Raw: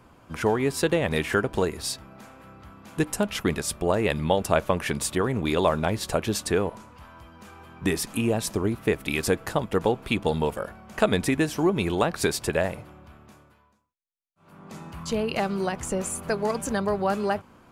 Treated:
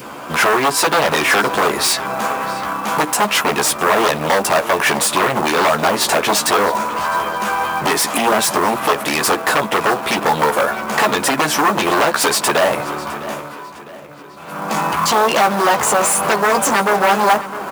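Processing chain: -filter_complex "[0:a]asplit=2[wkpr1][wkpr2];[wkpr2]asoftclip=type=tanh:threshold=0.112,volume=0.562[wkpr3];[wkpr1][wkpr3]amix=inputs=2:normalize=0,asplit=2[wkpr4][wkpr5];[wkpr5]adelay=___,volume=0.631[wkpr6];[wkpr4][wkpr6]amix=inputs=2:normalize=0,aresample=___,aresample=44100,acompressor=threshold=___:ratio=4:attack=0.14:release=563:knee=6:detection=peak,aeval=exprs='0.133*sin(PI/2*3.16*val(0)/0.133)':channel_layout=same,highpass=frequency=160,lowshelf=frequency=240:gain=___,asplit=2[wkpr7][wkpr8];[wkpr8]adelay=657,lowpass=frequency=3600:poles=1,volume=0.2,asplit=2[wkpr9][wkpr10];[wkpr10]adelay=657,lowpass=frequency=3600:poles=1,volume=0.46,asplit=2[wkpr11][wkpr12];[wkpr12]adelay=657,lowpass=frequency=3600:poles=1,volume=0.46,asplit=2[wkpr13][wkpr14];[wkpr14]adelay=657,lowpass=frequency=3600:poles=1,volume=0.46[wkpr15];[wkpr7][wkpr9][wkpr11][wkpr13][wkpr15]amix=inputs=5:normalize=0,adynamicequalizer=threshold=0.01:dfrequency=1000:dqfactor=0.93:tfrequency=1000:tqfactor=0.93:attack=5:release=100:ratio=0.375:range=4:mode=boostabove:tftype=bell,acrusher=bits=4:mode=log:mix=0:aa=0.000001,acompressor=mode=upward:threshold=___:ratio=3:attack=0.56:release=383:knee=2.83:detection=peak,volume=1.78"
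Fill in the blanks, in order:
14, 32000, 0.0708, -10, 0.0282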